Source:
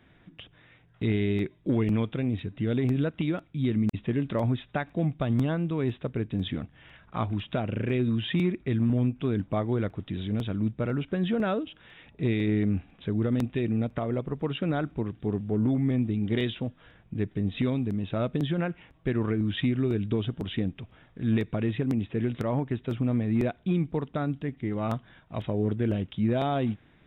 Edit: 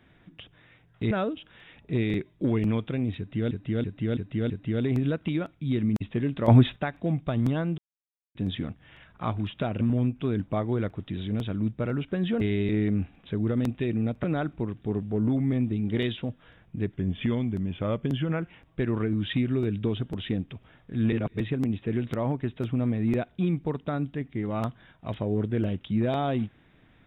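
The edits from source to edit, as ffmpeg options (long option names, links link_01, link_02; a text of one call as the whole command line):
ffmpeg -i in.wav -filter_complex "[0:a]asplit=19[link_01][link_02][link_03][link_04][link_05][link_06][link_07][link_08][link_09][link_10][link_11][link_12][link_13][link_14][link_15][link_16][link_17][link_18][link_19];[link_01]atrim=end=1.112[link_20];[link_02]atrim=start=11.408:end=12.442[link_21];[link_03]atrim=start=1.388:end=2.762[link_22];[link_04]atrim=start=2.428:end=2.762[link_23];[link_05]atrim=start=2.428:end=2.762[link_24];[link_06]atrim=start=2.428:end=2.762[link_25];[link_07]atrim=start=2.428:end=4.412[link_26];[link_08]atrim=start=4.408:end=4.692,asetpts=PTS-STARTPTS,volume=10.5dB[link_27];[link_09]atrim=start=4.688:end=5.71,asetpts=PTS-STARTPTS,afade=type=out:start_time=1.018:duration=0.004:curve=hsin[link_28];[link_10]atrim=start=5.71:end=6.28,asetpts=PTS-STARTPTS,volume=0[link_29];[link_11]atrim=start=6.28:end=7.742,asetpts=PTS-STARTPTS,afade=type=in:duration=0.004:curve=hsin[link_30];[link_12]atrim=start=8.808:end=11.412[link_31];[link_13]atrim=start=1.108:end=1.392[link_32];[link_14]atrim=start=12.438:end=13.992[link_33];[link_15]atrim=start=14.618:end=17.324[link_34];[link_16]atrim=start=17.32:end=18.7,asetpts=PTS-STARTPTS,asetrate=41013,aresample=44100[link_35];[link_17]atrim=start=18.696:end=21.402[link_36];[link_18]atrim=start=21.398:end=21.682,asetpts=PTS-STARTPTS,areverse[link_37];[link_19]atrim=start=21.678[link_38];[link_20][link_21]acrossfade=duration=0.004:curve1=hsin:curve2=hsin[link_39];[link_39][link_22]acrossfade=duration=0.004:curve1=hsin:curve2=hsin[link_40];[link_40][link_23]acrossfade=duration=0.004:curve1=hsin:curve2=hsin[link_41];[link_41][link_24]acrossfade=duration=0.004:curve1=hsin:curve2=hsin[link_42];[link_42][link_25]acrossfade=duration=0.004:curve1=hsin:curve2=hsin[link_43];[link_43][link_26]acrossfade=duration=0.004:curve1=hsin:curve2=hsin[link_44];[link_44][link_27]acrossfade=duration=0.004:curve1=hsin:curve2=hsin[link_45];[link_28][link_29][link_30]concat=n=3:v=0:a=1[link_46];[link_45][link_46]acrossfade=duration=0.004:curve1=hsin:curve2=hsin[link_47];[link_47][link_31]acrossfade=duration=0.004:curve1=hsin:curve2=hsin[link_48];[link_48][link_32]acrossfade=duration=0.004:curve1=hsin:curve2=hsin[link_49];[link_49][link_33]acrossfade=duration=0.004:curve1=hsin:curve2=hsin[link_50];[link_50][link_34]acrossfade=duration=0.004:curve1=hsin:curve2=hsin[link_51];[link_51][link_35]acrossfade=duration=0.004:curve1=hsin:curve2=hsin[link_52];[link_52][link_36]acrossfade=duration=0.004:curve1=hsin:curve2=hsin[link_53];[link_53][link_37]acrossfade=duration=0.004:curve1=hsin:curve2=hsin[link_54];[link_54][link_38]acrossfade=duration=0.004:curve1=hsin:curve2=hsin" out.wav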